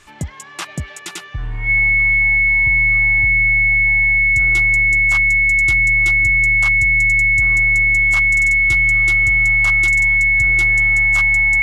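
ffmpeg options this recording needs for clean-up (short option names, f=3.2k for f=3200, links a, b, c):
-af "bandreject=f=2.2k:w=30"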